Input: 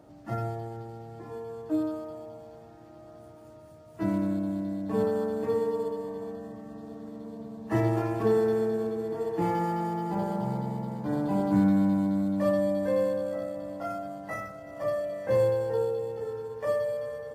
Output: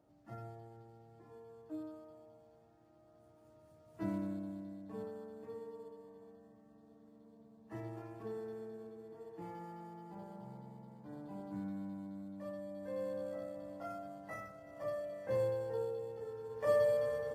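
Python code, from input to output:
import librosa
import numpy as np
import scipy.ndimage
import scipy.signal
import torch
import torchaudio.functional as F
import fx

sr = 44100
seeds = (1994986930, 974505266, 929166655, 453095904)

y = fx.gain(x, sr, db=fx.line((3.09, -16.5), (4.04, -9.5), (5.22, -20.0), (12.68, -20.0), (13.22, -10.5), (16.38, -10.5), (16.82, -0.5)))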